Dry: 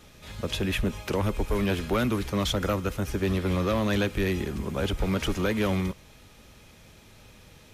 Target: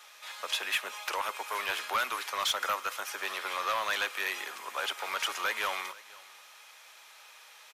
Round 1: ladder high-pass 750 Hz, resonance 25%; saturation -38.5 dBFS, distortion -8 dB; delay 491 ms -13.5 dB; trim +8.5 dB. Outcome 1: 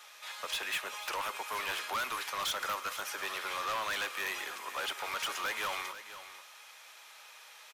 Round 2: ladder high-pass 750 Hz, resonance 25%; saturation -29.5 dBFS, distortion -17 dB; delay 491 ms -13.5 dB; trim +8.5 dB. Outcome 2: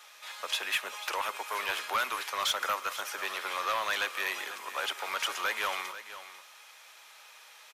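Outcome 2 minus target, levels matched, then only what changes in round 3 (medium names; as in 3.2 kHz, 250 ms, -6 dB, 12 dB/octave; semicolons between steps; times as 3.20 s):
echo-to-direct +9 dB
change: delay 491 ms -22.5 dB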